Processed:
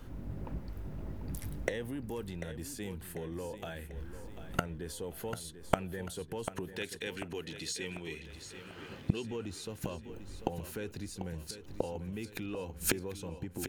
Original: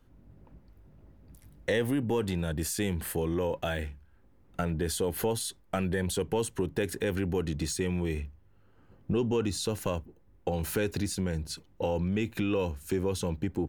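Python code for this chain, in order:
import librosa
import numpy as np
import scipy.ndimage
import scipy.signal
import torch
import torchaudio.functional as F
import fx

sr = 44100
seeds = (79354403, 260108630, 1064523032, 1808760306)

y = fx.weighting(x, sr, curve='D', at=(6.73, 9.25))
y = fx.gate_flip(y, sr, shuts_db=-28.0, range_db=-25)
y = fx.echo_feedback(y, sr, ms=743, feedback_pct=49, wet_db=-11.0)
y = y * librosa.db_to_amplitude(14.0)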